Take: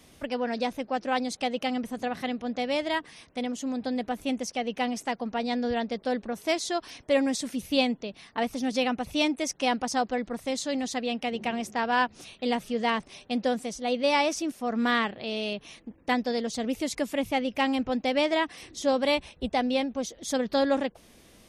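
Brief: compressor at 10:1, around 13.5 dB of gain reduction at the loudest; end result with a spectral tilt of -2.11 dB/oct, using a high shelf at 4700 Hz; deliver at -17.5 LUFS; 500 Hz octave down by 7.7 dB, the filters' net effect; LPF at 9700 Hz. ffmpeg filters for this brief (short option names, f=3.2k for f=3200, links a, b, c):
-af "lowpass=9.7k,equalizer=f=500:t=o:g=-9,highshelf=f=4.7k:g=8,acompressor=threshold=-34dB:ratio=10,volume=20.5dB"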